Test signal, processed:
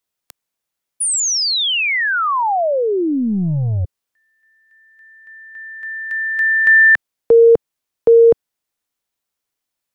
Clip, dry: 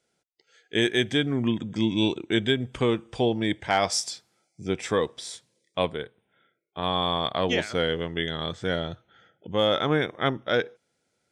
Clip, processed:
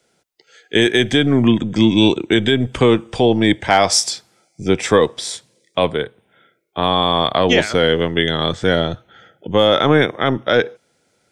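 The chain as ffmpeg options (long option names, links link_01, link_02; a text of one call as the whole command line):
ffmpeg -i in.wav -filter_complex "[0:a]acrossover=split=160|840|1500[link_01][link_02][link_03][link_04];[link_01]aeval=exprs='0.0531*(cos(1*acos(clip(val(0)/0.0531,-1,1)))-cos(1*PI/2))+0.00473*(cos(8*acos(clip(val(0)/0.0531,-1,1)))-cos(8*PI/2))':channel_layout=same[link_05];[link_02]crystalizer=i=7.5:c=0[link_06];[link_05][link_06][link_03][link_04]amix=inputs=4:normalize=0,alimiter=level_in=13dB:limit=-1dB:release=50:level=0:latency=1,volume=-1.5dB" out.wav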